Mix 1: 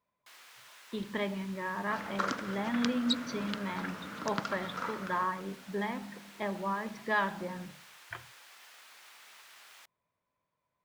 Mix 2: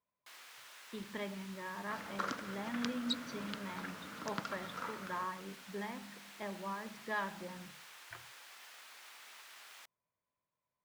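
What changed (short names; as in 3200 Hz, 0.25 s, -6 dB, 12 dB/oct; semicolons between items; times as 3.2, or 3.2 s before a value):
speech -8.0 dB; second sound -5.5 dB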